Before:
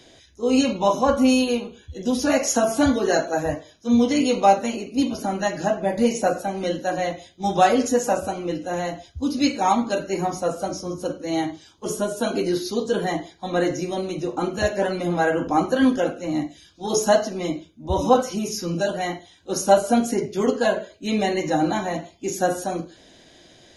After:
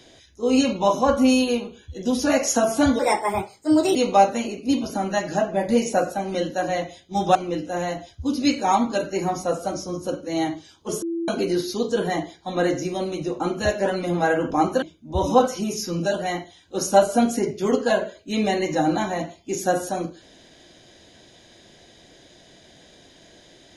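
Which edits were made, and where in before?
0:02.99–0:04.24: play speed 130%
0:07.64–0:08.32: remove
0:11.99–0:12.25: beep over 335 Hz −23.5 dBFS
0:15.79–0:17.57: remove

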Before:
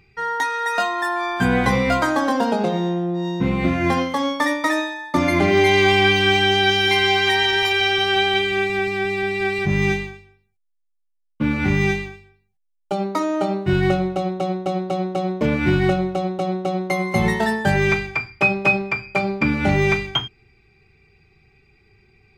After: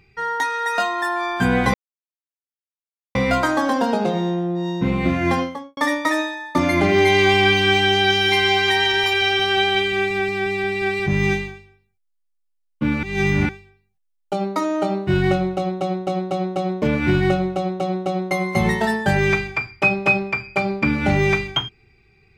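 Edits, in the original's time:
0:01.74: splice in silence 1.41 s
0:03.90–0:04.36: fade out and dull
0:11.62–0:12.08: reverse

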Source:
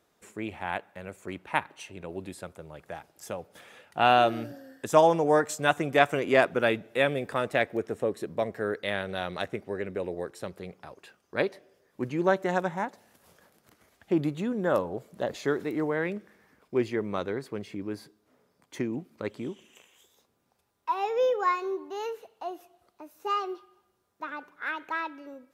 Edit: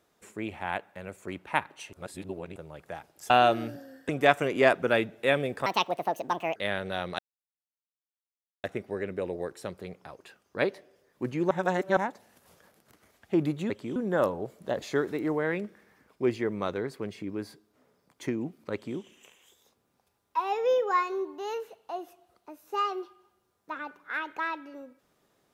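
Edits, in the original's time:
0:01.93–0:02.56: reverse
0:03.30–0:04.06: remove
0:04.85–0:05.81: remove
0:07.38–0:08.79: play speed 157%
0:09.42: splice in silence 1.45 s
0:12.29–0:12.75: reverse
0:19.25–0:19.51: duplicate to 0:14.48

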